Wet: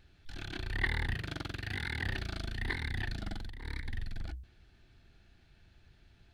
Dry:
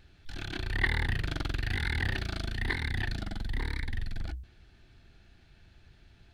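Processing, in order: 1.14–2.06 s: high-pass 83 Hz; 3.22–3.88 s: compressor with a negative ratio -34 dBFS, ratio -0.5; trim -4 dB

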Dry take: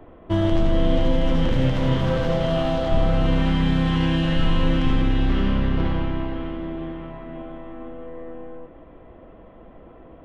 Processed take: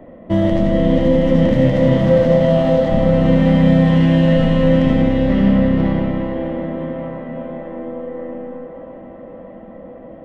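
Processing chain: tone controls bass -1 dB, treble +4 dB; small resonant body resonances 210/540/1900 Hz, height 17 dB, ringing for 30 ms; on a send: feedback echo behind a band-pass 579 ms, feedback 71%, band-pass 710 Hz, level -7 dB; on the sum: trim -3 dB

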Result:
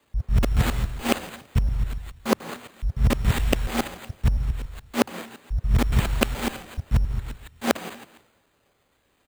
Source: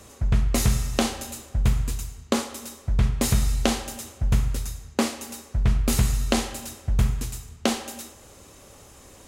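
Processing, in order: time reversed locally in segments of 141 ms; wow and flutter 64 cents; careless resampling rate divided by 8×, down none, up hold; on a send: frequency-shifting echo 166 ms, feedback 40%, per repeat -57 Hz, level -18 dB; on the sum: three bands expanded up and down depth 70%; trim -1 dB

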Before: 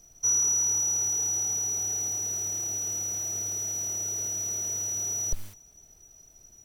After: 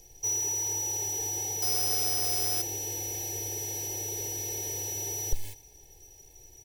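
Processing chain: bass shelf 220 Hz -3.5 dB; comb 2.3 ms, depth 78%; in parallel at -3.5 dB: overload inside the chain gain 35.5 dB; on the sum: Butterworth band-stop 1.3 kHz, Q 1.7; on a send: delay 117 ms -20.5 dB; 1.62–2.62 s: on the sum: careless resampling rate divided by 4×, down none, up zero stuff

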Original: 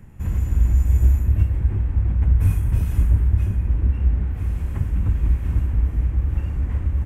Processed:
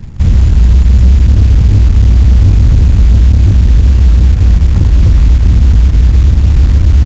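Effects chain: bass shelf 340 Hz +11 dB; in parallel at +2.5 dB: compressor with a negative ratio -11 dBFS, ratio -1; on the sum: companded quantiser 6-bit; resampled via 16 kHz; trim -1.5 dB

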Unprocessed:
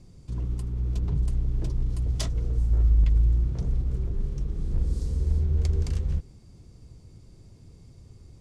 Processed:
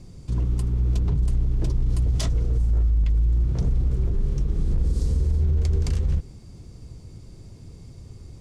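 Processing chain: peak limiter -22 dBFS, peak gain reduction 9.5 dB; trim +7 dB

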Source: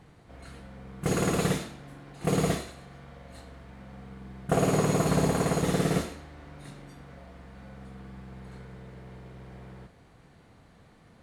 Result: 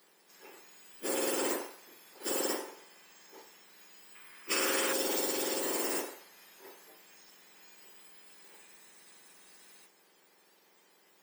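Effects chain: spectrum inverted on a logarithmic axis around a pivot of 1.9 kHz; 4.15–4.93 s: high-order bell 1.7 kHz +8.5 dB; trim -1 dB

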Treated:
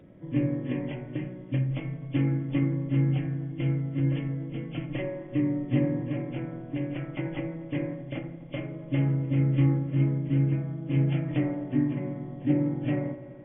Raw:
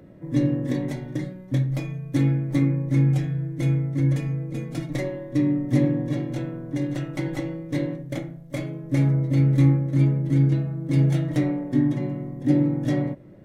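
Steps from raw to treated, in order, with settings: knee-point frequency compression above 2.1 kHz 4:1; feedback echo behind a low-pass 84 ms, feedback 82%, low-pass 1.4 kHz, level -13.5 dB; trim -4.5 dB

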